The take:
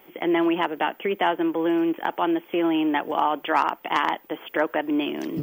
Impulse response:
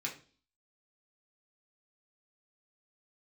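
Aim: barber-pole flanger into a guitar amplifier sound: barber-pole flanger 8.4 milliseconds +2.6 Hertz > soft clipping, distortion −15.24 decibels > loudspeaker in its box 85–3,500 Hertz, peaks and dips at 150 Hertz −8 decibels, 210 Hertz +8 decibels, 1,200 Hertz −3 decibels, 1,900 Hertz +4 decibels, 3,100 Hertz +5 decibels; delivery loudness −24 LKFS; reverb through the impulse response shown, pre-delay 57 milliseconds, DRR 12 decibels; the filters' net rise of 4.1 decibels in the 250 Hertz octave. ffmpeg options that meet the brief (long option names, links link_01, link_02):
-filter_complex "[0:a]equalizer=frequency=250:width_type=o:gain=5.5,asplit=2[link_01][link_02];[1:a]atrim=start_sample=2205,adelay=57[link_03];[link_02][link_03]afir=irnorm=-1:irlink=0,volume=-14dB[link_04];[link_01][link_04]amix=inputs=2:normalize=0,asplit=2[link_05][link_06];[link_06]adelay=8.4,afreqshift=2.6[link_07];[link_05][link_07]amix=inputs=2:normalize=1,asoftclip=threshold=-18.5dB,highpass=85,equalizer=frequency=150:width_type=q:width=4:gain=-8,equalizer=frequency=210:width_type=q:width=4:gain=8,equalizer=frequency=1200:width_type=q:width=4:gain=-3,equalizer=frequency=1900:width_type=q:width=4:gain=4,equalizer=frequency=3100:width_type=q:width=4:gain=5,lowpass=frequency=3500:width=0.5412,lowpass=frequency=3500:width=1.3066,volume=2.5dB"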